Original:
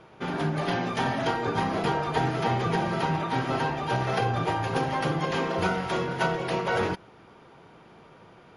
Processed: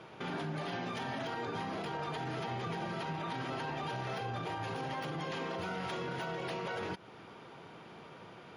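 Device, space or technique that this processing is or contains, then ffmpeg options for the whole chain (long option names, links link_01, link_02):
broadcast voice chain: -af "highpass=87,deesser=0.9,acompressor=threshold=-35dB:ratio=3,equalizer=frequency=3300:width_type=o:width=1.5:gain=3.5,alimiter=level_in=6dB:limit=-24dB:level=0:latency=1:release=29,volume=-6dB"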